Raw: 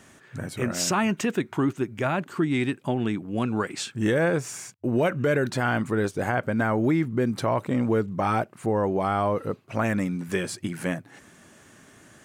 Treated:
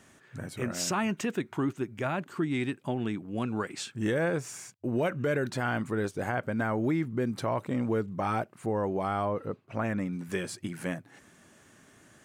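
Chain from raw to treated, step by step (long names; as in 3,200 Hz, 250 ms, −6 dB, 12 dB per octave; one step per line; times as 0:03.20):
0:09.25–0:10.13: high-shelf EQ 4,000 Hz −10 dB
level −5.5 dB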